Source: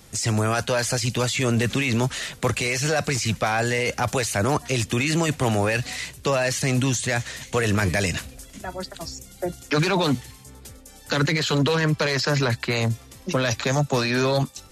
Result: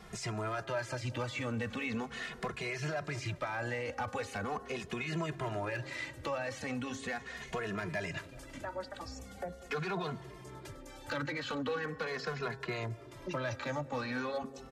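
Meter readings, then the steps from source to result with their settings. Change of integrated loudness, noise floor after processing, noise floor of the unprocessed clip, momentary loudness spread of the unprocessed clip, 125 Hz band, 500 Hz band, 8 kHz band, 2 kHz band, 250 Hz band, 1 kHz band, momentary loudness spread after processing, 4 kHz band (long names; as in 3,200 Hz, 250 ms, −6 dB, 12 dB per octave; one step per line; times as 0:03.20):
−15.0 dB, −51 dBFS, −47 dBFS, 11 LU, −17.0 dB, −13.5 dB, −22.0 dB, −12.5 dB, −15.0 dB, −12.0 dB, 8 LU, −17.5 dB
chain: low-pass filter 2,400 Hz 6 dB per octave
parametric band 1,200 Hz +7.5 dB 2.4 octaves
hum removal 135.4 Hz, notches 14
downward compressor 2.5 to 1, threshold −38 dBFS, peak gain reduction 16 dB
hard clipping −26 dBFS, distortion −22 dB
feedback echo with a band-pass in the loop 193 ms, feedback 83%, band-pass 350 Hz, level −16 dB
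barber-pole flanger 2.4 ms −0.4 Hz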